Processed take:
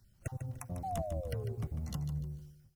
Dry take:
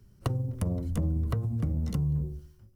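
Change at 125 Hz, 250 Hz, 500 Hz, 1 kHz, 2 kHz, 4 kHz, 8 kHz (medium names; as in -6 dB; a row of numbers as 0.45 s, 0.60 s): -9.5 dB, -11.0 dB, -0.5 dB, +3.0 dB, -3.0 dB, no reading, -1.0 dB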